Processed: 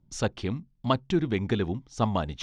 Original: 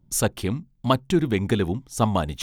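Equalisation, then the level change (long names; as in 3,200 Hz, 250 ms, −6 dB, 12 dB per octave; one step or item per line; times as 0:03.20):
low-pass filter 5,800 Hz 24 dB per octave
−4.5 dB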